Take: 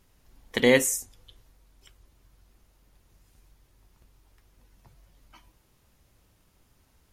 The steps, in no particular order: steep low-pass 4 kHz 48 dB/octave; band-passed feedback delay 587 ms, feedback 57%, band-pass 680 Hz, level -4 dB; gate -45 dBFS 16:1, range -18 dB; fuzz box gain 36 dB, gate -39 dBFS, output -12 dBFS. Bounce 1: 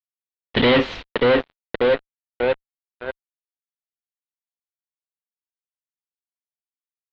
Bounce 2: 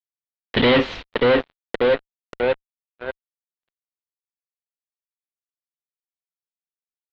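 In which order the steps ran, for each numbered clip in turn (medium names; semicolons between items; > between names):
band-passed feedback delay > gate > fuzz box > steep low-pass; band-passed feedback delay > fuzz box > steep low-pass > gate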